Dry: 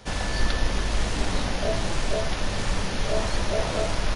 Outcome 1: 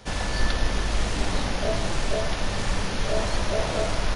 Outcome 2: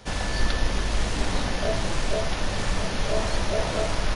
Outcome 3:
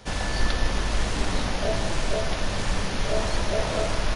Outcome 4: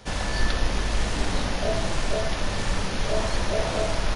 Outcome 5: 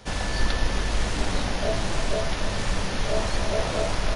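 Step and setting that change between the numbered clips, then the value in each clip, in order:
feedback echo with a band-pass in the loop, delay time: 104, 1,150, 156, 68, 295 milliseconds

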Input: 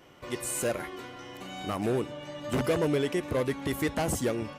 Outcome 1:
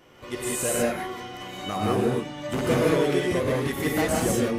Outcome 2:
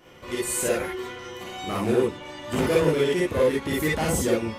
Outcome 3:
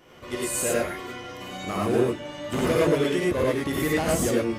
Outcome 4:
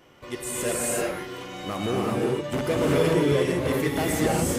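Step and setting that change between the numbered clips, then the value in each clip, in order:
reverb whose tail is shaped and stops, gate: 220, 80, 130, 410 milliseconds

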